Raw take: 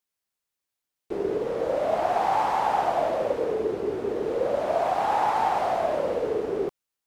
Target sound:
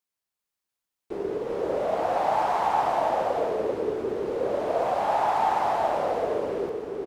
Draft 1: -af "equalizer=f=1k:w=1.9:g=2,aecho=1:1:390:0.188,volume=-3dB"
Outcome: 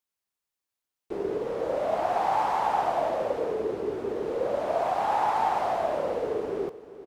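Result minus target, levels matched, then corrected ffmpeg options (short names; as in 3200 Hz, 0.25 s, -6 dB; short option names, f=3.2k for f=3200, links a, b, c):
echo-to-direct -12 dB
-af "equalizer=f=1k:w=1.9:g=2,aecho=1:1:390:0.75,volume=-3dB"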